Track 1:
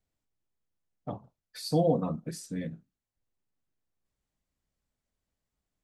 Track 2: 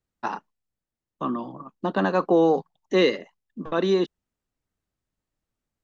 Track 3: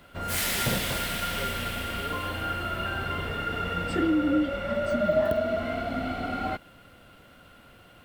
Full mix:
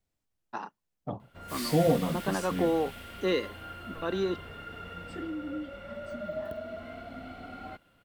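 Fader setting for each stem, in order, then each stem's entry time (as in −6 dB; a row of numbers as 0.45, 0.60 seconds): +1.0, −8.5, −12.5 decibels; 0.00, 0.30, 1.20 seconds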